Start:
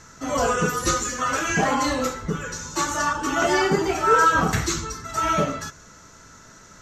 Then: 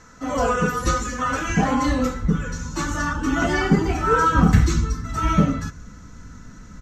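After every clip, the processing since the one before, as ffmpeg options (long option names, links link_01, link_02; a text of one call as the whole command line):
ffmpeg -i in.wav -af "highshelf=frequency=3400:gain=-8,aecho=1:1:4:0.39,asubboost=boost=6:cutoff=220" out.wav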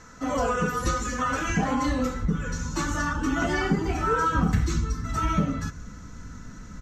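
ffmpeg -i in.wav -af "acompressor=threshold=-25dB:ratio=2" out.wav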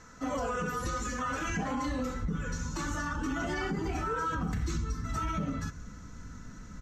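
ffmpeg -i in.wav -af "alimiter=limit=-20dB:level=0:latency=1:release=47,volume=-4.5dB" out.wav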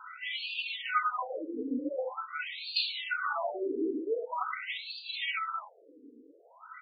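ffmpeg -i in.wav -af "asuperstop=centerf=1700:order=12:qfactor=5.8,crystalizer=i=9.5:c=0,afftfilt=real='re*between(b*sr/1024,340*pow(3400/340,0.5+0.5*sin(2*PI*0.45*pts/sr))/1.41,340*pow(3400/340,0.5+0.5*sin(2*PI*0.45*pts/sr))*1.41)':imag='im*between(b*sr/1024,340*pow(3400/340,0.5+0.5*sin(2*PI*0.45*pts/sr))/1.41,340*pow(3400/340,0.5+0.5*sin(2*PI*0.45*pts/sr))*1.41)':win_size=1024:overlap=0.75,volume=4.5dB" out.wav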